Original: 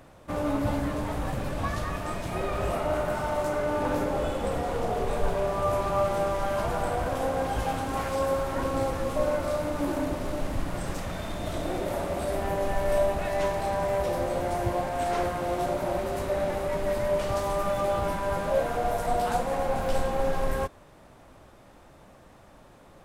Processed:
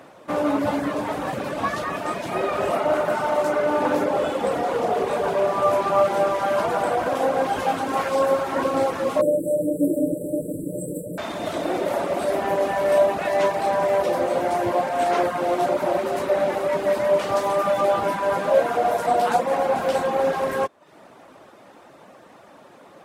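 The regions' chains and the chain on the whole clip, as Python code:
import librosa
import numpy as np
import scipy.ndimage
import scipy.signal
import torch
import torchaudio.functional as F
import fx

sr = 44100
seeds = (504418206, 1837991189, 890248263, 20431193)

y = fx.chain(x, sr, fx.brickwall_bandstop(low_hz=610.0, high_hz=7500.0),
    fx.high_shelf(hz=8900.0, db=6.5),
    fx.comb(ms=6.4, depth=0.74), at=(9.21, 11.18))
y = fx.dereverb_blind(y, sr, rt60_s=0.52)
y = scipy.signal.sosfilt(scipy.signal.butter(2, 240.0, 'highpass', fs=sr, output='sos'), y)
y = fx.high_shelf(y, sr, hz=5300.0, db=-6.5)
y = y * 10.0 ** (8.5 / 20.0)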